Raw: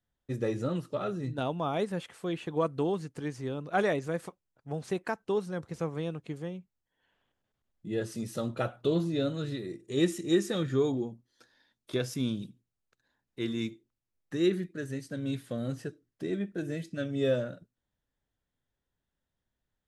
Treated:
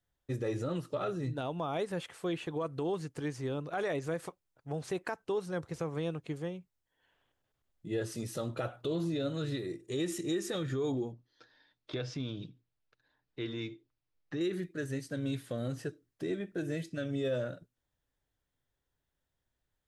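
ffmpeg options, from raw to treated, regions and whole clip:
ffmpeg -i in.wav -filter_complex "[0:a]asettb=1/sr,asplit=3[link_01][link_02][link_03];[link_01]atrim=end=11.124[link_04];[link_02]atrim=start=11.12:end=14.41,asetpts=PTS-STARTPTS,afade=type=in:duration=0.004:curve=qsin,afade=type=out:start_time=3.286:duration=0.004:curve=qsin,lowpass=frequency=5000:width=0.5412,lowpass=frequency=5000:width=1.3066,aecho=1:1:6.6:0.31,atrim=end_sample=145089,acompressor=threshold=-34dB:ratio=2.5:attack=3.2:release=140:knee=1:detection=peak[link_05];[link_03]atrim=start=14.406[link_06];[link_04][link_05]acrossfade=duration=0.004:curve1=hsin:curve2=qsin[link_07];[link_07][link_06]acrossfade=duration=0.004:curve1=qsin:curve2=hsin,alimiter=level_in=1.5dB:limit=-24dB:level=0:latency=1:release=77,volume=-1.5dB,equalizer=frequency=210:width=3.9:gain=-8.5,volume=1dB" out.wav

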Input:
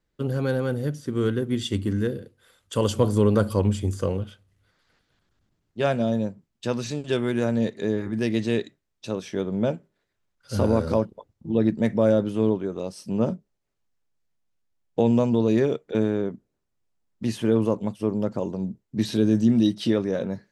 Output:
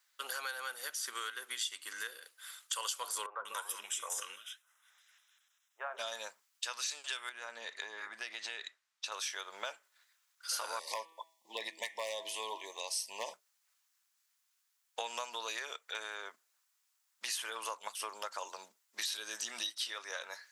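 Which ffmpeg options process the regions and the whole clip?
ffmpeg -i in.wav -filter_complex "[0:a]asettb=1/sr,asplit=3[link_01][link_02][link_03];[link_01]atrim=end=3.264[link_04];[link_02]atrim=start=3.26:end=5.99,asetpts=PTS-STARTPTS,afade=type=in:duration=0.004:curve=qsin,afade=type=out:start_time=2.726:duration=0.004:curve=qsin,acrossover=split=400|1400[link_05][link_06][link_07];[link_05]adelay=140[link_08];[link_07]adelay=190[link_09];[link_08][link_06][link_09]amix=inputs=3:normalize=0,atrim=end_sample=120393,flanger=delay=4.3:depth=7.2:regen=84:speed=1.5:shape=triangular,asuperstop=centerf=4500:order=4:qfactor=3.7[link_10];[link_03]atrim=start=5.986[link_11];[link_04][link_10]acrossfade=duration=0.004:curve1=hsin:curve2=qsin[link_12];[link_12][link_11]acrossfade=duration=0.004:curve1=qsin:curve2=hsin,asettb=1/sr,asplit=3[link_13][link_14][link_15];[link_13]atrim=end=7.294[link_16];[link_14]atrim=start=7.29:end=9.12,asetpts=PTS-STARTPTS,afade=type=in:duration=0.004:curve=qsin,afade=type=out:start_time=1.826:duration=0.004:curve=qsin,aemphasis=mode=reproduction:type=bsi,acompressor=threshold=-24dB:ratio=4:attack=3.2:release=140:knee=1:detection=peak[link_17];[link_15]atrim=start=9.116[link_18];[link_16][link_17]acrossfade=duration=0.004:curve1=hsin:curve2=qsin[link_19];[link_19][link_18]acrossfade=duration=0.004:curve1=qsin:curve2=hsin,asettb=1/sr,asplit=3[link_20][link_21][link_22];[link_20]atrim=end=10.794[link_23];[link_21]atrim=start=10.79:end=13.34,asetpts=PTS-STARTPTS,afade=type=in:duration=0.004:curve=qsin,afade=type=out:start_time=2.546:duration=0.004:curve=qsin,bandreject=frequency=163.2:width_type=h:width=4,bandreject=frequency=326.4:width_type=h:width=4,bandreject=frequency=489.6:width_type=h:width=4,bandreject=frequency=652.8:width_type=h:width=4,bandreject=frequency=816:width_type=h:width=4,bandreject=frequency=979.2:width_type=h:width=4,bandreject=frequency=1142.4:width_type=h:width=4,bandreject=frequency=1305.6:width_type=h:width=4,bandreject=frequency=1468.8:width_type=h:width=4,bandreject=frequency=1632:width_type=h:width=4,bandreject=frequency=1795.2:width_type=h:width=4,bandreject=frequency=1958.4:width_type=h:width=4,bandreject=frequency=2121.6:width_type=h:width=4,bandreject=frequency=2284.8:width_type=h:width=4,bandreject=frequency=2448:width_type=h:width=4,bandreject=frequency=2611.2:width_type=h:width=4,bandreject=frequency=2774.4:width_type=h:width=4,bandreject=frequency=2937.6:width_type=h:width=4,bandreject=frequency=3100.8:width_type=h:width=4,bandreject=frequency=3264:width_type=h:width=4,bandreject=frequency=3427.2:width_type=h:width=4,bandreject=frequency=3590.4:width_type=h:width=4,asoftclip=type=hard:threshold=-11dB,asuperstop=centerf=1400:order=12:qfactor=2.1[link_24];[link_22]atrim=start=13.336[link_25];[link_23][link_24]acrossfade=duration=0.004:curve1=hsin:curve2=qsin[link_26];[link_26][link_25]acrossfade=duration=0.004:curve1=qsin:curve2=hsin,highpass=frequency=1200:width=0.5412,highpass=frequency=1200:width=1.3066,acompressor=threshold=-47dB:ratio=6,equalizer=frequency=2000:width=0.45:gain=-8.5,volume=16.5dB" out.wav

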